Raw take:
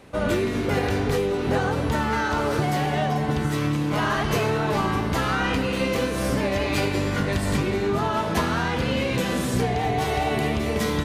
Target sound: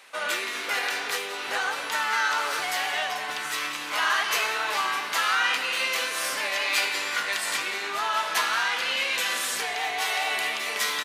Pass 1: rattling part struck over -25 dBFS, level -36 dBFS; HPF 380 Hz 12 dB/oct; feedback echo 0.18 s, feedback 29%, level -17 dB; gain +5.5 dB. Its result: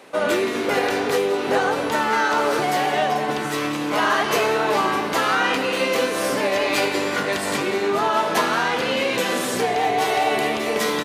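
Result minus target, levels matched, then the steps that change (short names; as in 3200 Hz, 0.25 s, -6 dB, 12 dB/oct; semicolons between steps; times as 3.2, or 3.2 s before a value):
500 Hz band +11.5 dB
change: HPF 1400 Hz 12 dB/oct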